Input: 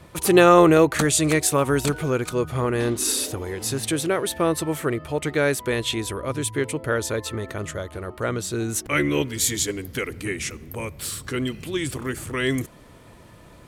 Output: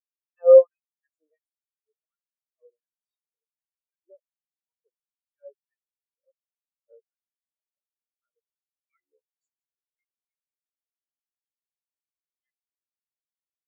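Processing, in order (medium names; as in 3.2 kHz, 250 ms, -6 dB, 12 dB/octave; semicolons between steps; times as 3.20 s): LFO high-pass sine 1.4 Hz 480–4900 Hz; spectral contrast expander 4:1; trim -4.5 dB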